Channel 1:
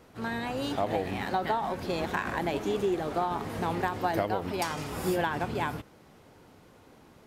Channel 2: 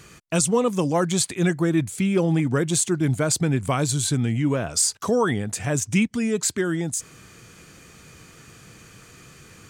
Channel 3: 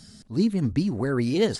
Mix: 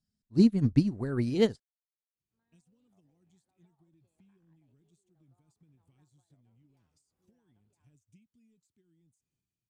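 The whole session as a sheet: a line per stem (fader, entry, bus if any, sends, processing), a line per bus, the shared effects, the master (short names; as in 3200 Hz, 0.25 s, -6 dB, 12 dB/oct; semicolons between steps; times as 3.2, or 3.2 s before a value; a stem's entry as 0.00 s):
-15.0 dB, 2.15 s, bus A, no send, dry
-11.5 dB, 2.20 s, bus A, no send, band shelf 940 Hz -13.5 dB 2.3 oct
-2.0 dB, 0.00 s, no bus, no send, dry
bus A: 0.0 dB, transient shaper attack 0 dB, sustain +6 dB; compressor 6:1, threshold -39 dBFS, peak gain reduction 10.5 dB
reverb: off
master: low shelf 250 Hz +8 dB; upward expander 2.5:1, over -42 dBFS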